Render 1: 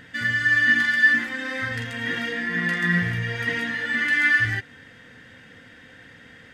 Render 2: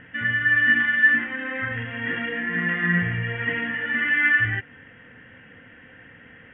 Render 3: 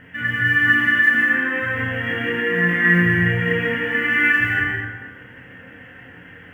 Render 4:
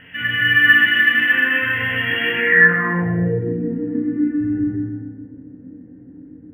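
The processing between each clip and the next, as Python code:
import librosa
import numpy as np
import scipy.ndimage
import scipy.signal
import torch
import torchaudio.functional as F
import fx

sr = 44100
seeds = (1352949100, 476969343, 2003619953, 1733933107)

y1 = scipy.signal.sosfilt(scipy.signal.butter(16, 3100.0, 'lowpass', fs=sr, output='sos'), x)
y2 = fx.quant_companded(y1, sr, bits=8)
y2 = fx.room_early_taps(y2, sr, ms=(23, 34), db=(-3.5, -5.0))
y2 = fx.rev_plate(y2, sr, seeds[0], rt60_s=1.3, hf_ratio=0.5, predelay_ms=120, drr_db=-0.5)
y3 = fx.echo_feedback(y2, sr, ms=127, feedback_pct=51, wet_db=-6.0)
y3 = (np.kron(scipy.signal.resample_poly(y3, 1, 3), np.eye(3)[0]) * 3)[:len(y3)]
y3 = fx.filter_sweep_lowpass(y3, sr, from_hz=2900.0, to_hz=290.0, start_s=2.33, end_s=3.59, q=4.6)
y3 = F.gain(torch.from_numpy(y3), -2.5).numpy()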